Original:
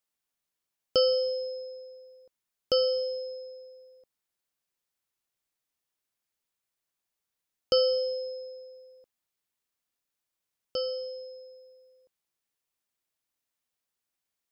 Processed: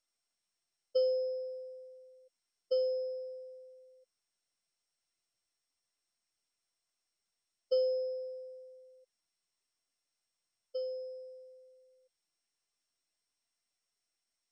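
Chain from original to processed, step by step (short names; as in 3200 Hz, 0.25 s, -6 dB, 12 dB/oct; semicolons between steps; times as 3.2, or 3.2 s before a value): spectral contrast raised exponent 2.3; gain -5.5 dB; MP2 128 kbps 22050 Hz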